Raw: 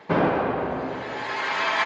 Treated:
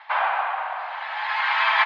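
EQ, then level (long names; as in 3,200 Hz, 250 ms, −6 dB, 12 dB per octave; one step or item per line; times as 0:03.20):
Butterworth high-pass 750 Hz 48 dB per octave
low-pass filter 3,900 Hz 24 dB per octave
+4.5 dB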